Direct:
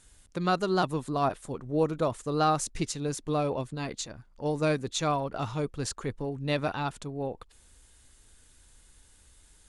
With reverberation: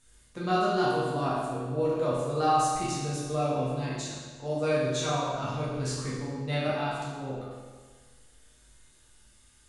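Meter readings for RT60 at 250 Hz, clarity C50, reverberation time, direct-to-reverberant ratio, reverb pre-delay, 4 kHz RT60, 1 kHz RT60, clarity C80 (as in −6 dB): 1.5 s, −1.5 dB, 1.5 s, −8.5 dB, 8 ms, 1.3 s, 1.5 s, 1.0 dB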